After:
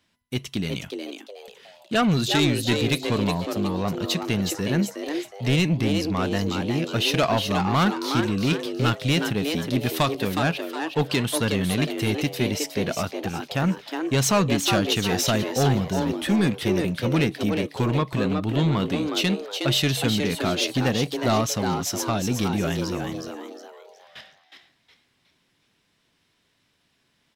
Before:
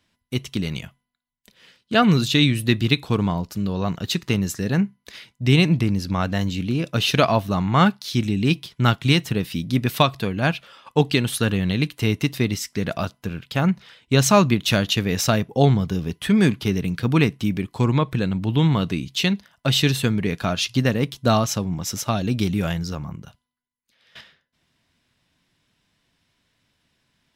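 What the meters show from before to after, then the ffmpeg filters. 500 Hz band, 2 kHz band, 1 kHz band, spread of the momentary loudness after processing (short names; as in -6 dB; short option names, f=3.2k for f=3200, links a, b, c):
-1.0 dB, -2.0 dB, -2.0 dB, 8 LU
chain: -filter_complex "[0:a]lowshelf=f=100:g=-6.5,asoftclip=type=tanh:threshold=-15dB,asplit=5[a][b][c][d][e];[b]adelay=365,afreqshift=150,volume=-6dB[f];[c]adelay=730,afreqshift=300,volume=-15.1dB[g];[d]adelay=1095,afreqshift=450,volume=-24.2dB[h];[e]adelay=1460,afreqshift=600,volume=-33.4dB[i];[a][f][g][h][i]amix=inputs=5:normalize=0"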